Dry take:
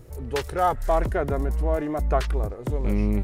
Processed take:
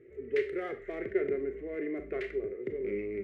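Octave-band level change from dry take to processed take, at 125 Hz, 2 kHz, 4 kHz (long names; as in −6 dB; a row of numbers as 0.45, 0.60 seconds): −25.0 dB, −5.0 dB, below −10 dB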